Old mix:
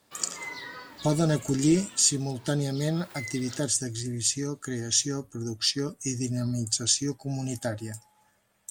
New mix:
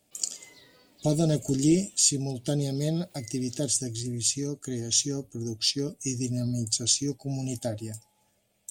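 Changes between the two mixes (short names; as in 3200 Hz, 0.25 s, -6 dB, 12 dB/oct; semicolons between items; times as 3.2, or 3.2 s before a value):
background -11.0 dB; master: add band shelf 1300 Hz -12 dB 1.3 oct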